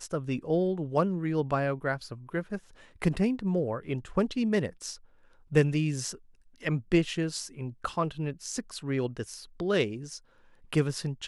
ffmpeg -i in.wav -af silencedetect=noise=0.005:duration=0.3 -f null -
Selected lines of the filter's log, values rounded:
silence_start: 4.97
silence_end: 5.51 | silence_duration: 0.54
silence_start: 6.17
silence_end: 6.56 | silence_duration: 0.38
silence_start: 10.19
silence_end: 10.73 | silence_duration: 0.54